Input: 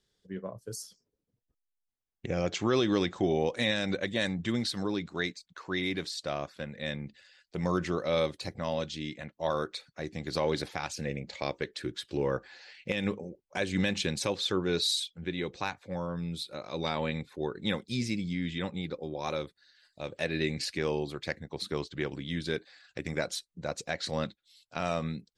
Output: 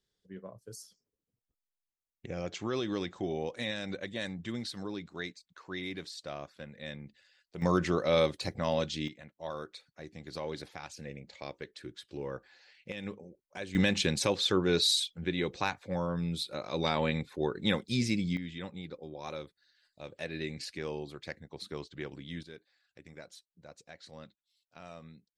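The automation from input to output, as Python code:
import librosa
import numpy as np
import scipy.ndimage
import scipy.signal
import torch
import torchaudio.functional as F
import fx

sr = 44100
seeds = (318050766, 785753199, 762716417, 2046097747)

y = fx.gain(x, sr, db=fx.steps((0.0, -7.0), (7.62, 2.0), (9.08, -9.0), (13.75, 2.0), (18.37, -7.0), (22.43, -17.0)))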